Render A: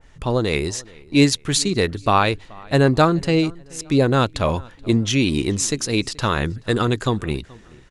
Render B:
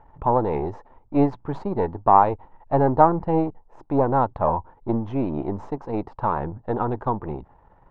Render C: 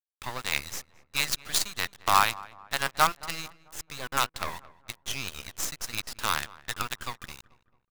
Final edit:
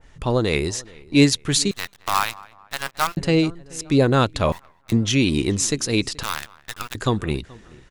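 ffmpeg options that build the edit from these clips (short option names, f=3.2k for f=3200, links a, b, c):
-filter_complex "[2:a]asplit=3[a][b][c];[0:a]asplit=4[d][e][f][g];[d]atrim=end=1.712[h];[a]atrim=start=1.708:end=3.172[i];[e]atrim=start=3.168:end=4.522[j];[b]atrim=start=4.518:end=4.922[k];[f]atrim=start=4.918:end=6.232[l];[c]atrim=start=6.228:end=6.952[m];[g]atrim=start=6.948[n];[h][i]acrossfade=d=0.004:c1=hsin:c2=hsin[o];[o][j]acrossfade=d=0.004:c1=hsin:c2=hsin[p];[p][k]acrossfade=d=0.004:c1=hsin:c2=hsin[q];[q][l]acrossfade=d=0.004:c1=hsin:c2=hsin[r];[r][m]acrossfade=d=0.004:c1=hsin:c2=hsin[s];[s][n]acrossfade=d=0.004:c1=hsin:c2=hsin"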